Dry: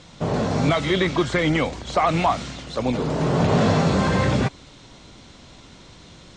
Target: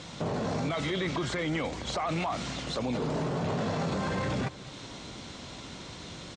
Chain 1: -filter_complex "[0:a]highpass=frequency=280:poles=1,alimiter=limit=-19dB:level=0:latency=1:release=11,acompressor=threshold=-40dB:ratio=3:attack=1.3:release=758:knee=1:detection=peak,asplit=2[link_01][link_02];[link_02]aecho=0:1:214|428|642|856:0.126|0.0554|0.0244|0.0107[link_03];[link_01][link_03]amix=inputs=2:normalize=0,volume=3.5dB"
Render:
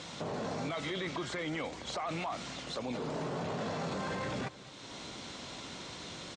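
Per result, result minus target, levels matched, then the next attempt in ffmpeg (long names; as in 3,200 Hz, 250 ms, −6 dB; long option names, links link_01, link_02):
downward compressor: peak gain reduction +5.5 dB; 125 Hz band −3.5 dB
-filter_complex "[0:a]highpass=frequency=280:poles=1,alimiter=limit=-19dB:level=0:latency=1:release=11,acompressor=threshold=-32dB:ratio=3:attack=1.3:release=758:knee=1:detection=peak,asplit=2[link_01][link_02];[link_02]aecho=0:1:214|428|642|856:0.126|0.0554|0.0244|0.0107[link_03];[link_01][link_03]amix=inputs=2:normalize=0,volume=3.5dB"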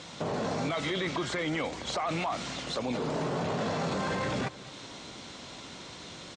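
125 Hz band −4.0 dB
-filter_complex "[0:a]highpass=frequency=87:poles=1,alimiter=limit=-19dB:level=0:latency=1:release=11,acompressor=threshold=-32dB:ratio=3:attack=1.3:release=758:knee=1:detection=peak,asplit=2[link_01][link_02];[link_02]aecho=0:1:214|428|642|856:0.126|0.0554|0.0244|0.0107[link_03];[link_01][link_03]amix=inputs=2:normalize=0,volume=3.5dB"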